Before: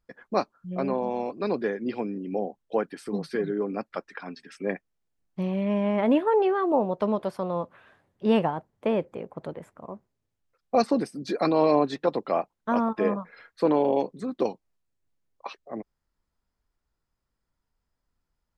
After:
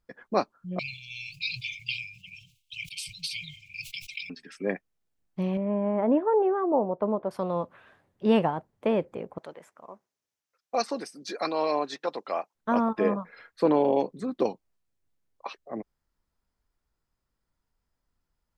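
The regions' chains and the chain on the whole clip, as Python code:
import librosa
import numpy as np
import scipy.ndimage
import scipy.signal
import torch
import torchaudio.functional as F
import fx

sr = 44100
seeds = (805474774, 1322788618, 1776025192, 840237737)

y = fx.chain(x, sr, fx.brickwall_bandstop(low_hz=150.0, high_hz=2100.0),
    fx.high_shelf_res(hz=2000.0, db=11.0, q=3.0),
    fx.sustainer(db_per_s=110.0), at=(0.79, 4.3))
y = fx.chain(y, sr, fx.lowpass(hz=1100.0, slope=12),
    fx.low_shelf(hz=140.0, db=-9.0), at=(5.57, 7.31))
y = fx.chain(y, sr, fx.highpass(hz=960.0, slope=6),
    fx.peak_eq(hz=5900.0, db=5.5, octaves=0.47), at=(9.38, 12.55))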